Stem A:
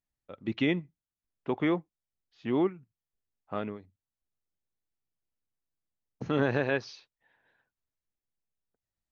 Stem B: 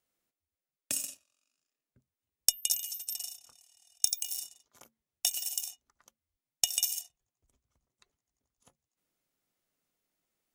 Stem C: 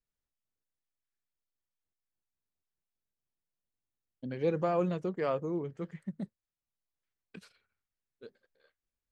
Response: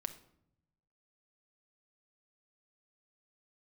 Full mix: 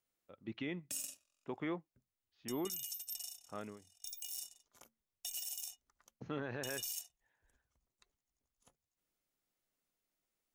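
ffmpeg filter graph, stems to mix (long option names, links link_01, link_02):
-filter_complex "[0:a]adynamicequalizer=threshold=0.00708:dfrequency=1500:dqfactor=0.79:tfrequency=1500:tqfactor=0.79:attack=5:release=100:ratio=0.375:range=1.5:mode=boostabove:tftype=bell,volume=-12dB[link_01];[1:a]alimiter=limit=-16dB:level=0:latency=1:release=59,asubboost=boost=2:cutoff=59,volume=-5dB[link_02];[link_01][link_02]amix=inputs=2:normalize=0,alimiter=level_in=6dB:limit=-24dB:level=0:latency=1:release=13,volume=-6dB"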